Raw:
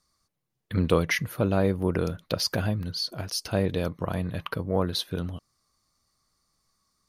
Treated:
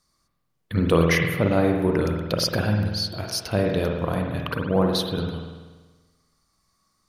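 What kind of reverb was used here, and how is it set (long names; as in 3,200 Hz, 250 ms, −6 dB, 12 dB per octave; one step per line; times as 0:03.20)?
spring reverb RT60 1.3 s, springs 48 ms, chirp 75 ms, DRR 1.5 dB
level +2.5 dB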